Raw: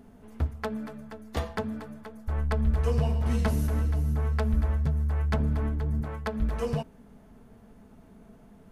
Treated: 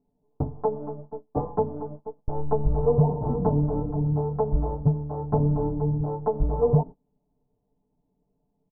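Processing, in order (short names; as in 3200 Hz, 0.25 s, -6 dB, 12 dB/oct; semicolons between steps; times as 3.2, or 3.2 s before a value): gate -41 dBFS, range -28 dB; elliptic low-pass 920 Hz, stop band 70 dB; comb 6.8 ms, depth 93%; gain +6 dB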